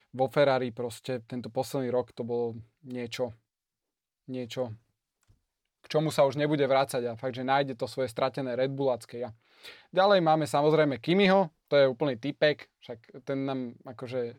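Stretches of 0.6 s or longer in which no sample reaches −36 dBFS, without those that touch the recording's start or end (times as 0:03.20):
0:03.30–0:04.29
0:04.72–0:05.85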